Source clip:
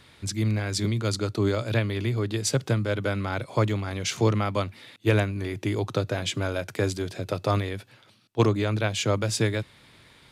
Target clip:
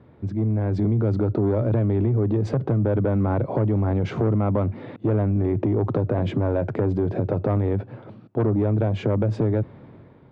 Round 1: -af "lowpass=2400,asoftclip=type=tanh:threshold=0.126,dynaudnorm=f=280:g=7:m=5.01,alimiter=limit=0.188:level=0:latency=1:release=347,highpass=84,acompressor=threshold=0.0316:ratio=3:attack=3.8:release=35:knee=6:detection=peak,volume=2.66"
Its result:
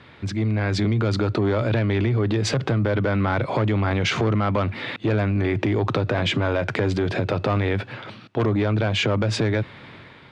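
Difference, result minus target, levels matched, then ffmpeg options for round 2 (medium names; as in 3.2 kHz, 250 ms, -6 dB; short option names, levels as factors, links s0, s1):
2 kHz band +14.0 dB
-af "lowpass=600,asoftclip=type=tanh:threshold=0.126,dynaudnorm=f=280:g=7:m=5.01,alimiter=limit=0.188:level=0:latency=1:release=347,highpass=84,acompressor=threshold=0.0316:ratio=3:attack=3.8:release=35:knee=6:detection=peak,volume=2.66"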